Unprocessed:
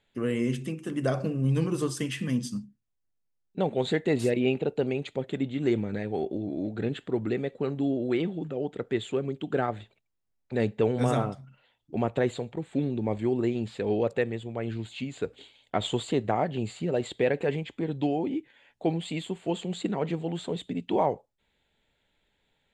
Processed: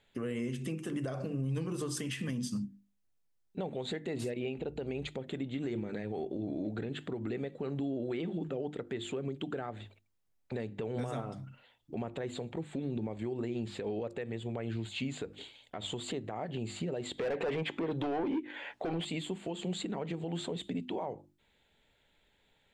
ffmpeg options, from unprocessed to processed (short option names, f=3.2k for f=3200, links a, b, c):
-filter_complex "[0:a]asettb=1/sr,asplit=3[a][b][c];[a]atrim=end=4.584[d];[b]atrim=start=4.58:end=5.08,asetpts=PTS-STARTPTS,afade=t=in:d=0.004:c=qsin,afade=t=out:st=0.496:d=0.004:c=qsin,aeval=exprs='val(0)+0.00447*(sin(2*PI*60*n/s)+sin(2*PI*2*60*n/s)/2+sin(2*PI*3*60*n/s)/3+sin(2*PI*4*60*n/s)/4+sin(2*PI*5*60*n/s)/5)':c=same[e];[c]atrim=start=5.076[f];[d][e]acrossfade=d=0.004:c1=hsin:c2=qsin[g];[g][f]acrossfade=d=0.004:c1=qsin:c2=hsin,asettb=1/sr,asplit=3[h][i][j];[h]atrim=end=17.184[k];[i]atrim=start=17.18:end=19.05,asetpts=PTS-STARTPTS,afade=t=in:d=0.004:c=qsin,afade=t=out:st=1.866:d=0.004:c=qsin,asplit=2[l][m];[m]highpass=f=720:p=1,volume=25dB,asoftclip=type=tanh:threshold=-12.5dB[n];[l][n]amix=inputs=2:normalize=0,lowpass=f=1.3k:p=1,volume=-6dB[o];[j]atrim=start=19.046[p];[k][o]acrossfade=d=0.004:c1=hsin:c2=qsin[q];[q][p]acrossfade=d=0.004:c1=qsin:c2=hsin,bandreject=f=50:t=h:w=6,bandreject=f=100:t=h:w=6,bandreject=f=150:t=h:w=6,bandreject=f=200:t=h:w=6,bandreject=f=250:t=h:w=6,bandreject=f=300:t=h:w=6,bandreject=f=350:t=h:w=6,acompressor=threshold=-30dB:ratio=6,alimiter=level_in=5.5dB:limit=-24dB:level=0:latency=1:release=159,volume=-5.5dB,volume=2.5dB"